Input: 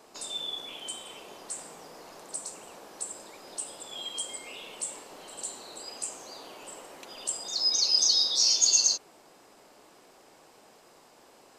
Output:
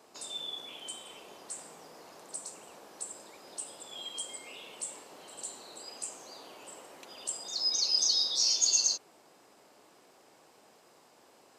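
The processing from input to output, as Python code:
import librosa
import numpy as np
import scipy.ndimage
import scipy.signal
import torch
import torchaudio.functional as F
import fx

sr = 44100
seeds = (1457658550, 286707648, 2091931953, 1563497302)

y = scipy.signal.sosfilt(scipy.signal.butter(2, 70.0, 'highpass', fs=sr, output='sos'), x)
y = y * 10.0 ** (-4.0 / 20.0)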